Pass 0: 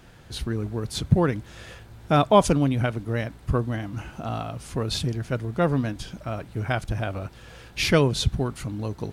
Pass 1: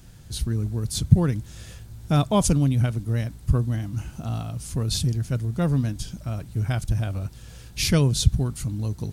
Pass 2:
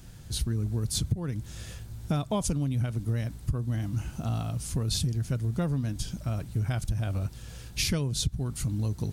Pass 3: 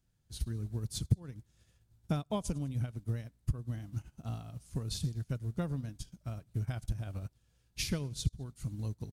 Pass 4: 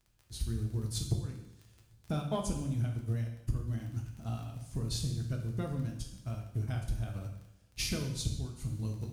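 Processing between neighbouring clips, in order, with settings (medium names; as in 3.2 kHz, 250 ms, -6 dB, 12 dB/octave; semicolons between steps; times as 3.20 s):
tone controls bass +13 dB, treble +15 dB; trim -7.5 dB
compression 16:1, threshold -24 dBFS, peak gain reduction 18 dB
feedback delay 101 ms, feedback 47%, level -22 dB; upward expansion 2.5:1, over -41 dBFS
crackle 22 per s -44 dBFS; saturation -23 dBFS, distortion -16 dB; two-slope reverb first 0.78 s, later 3.1 s, from -26 dB, DRR 1 dB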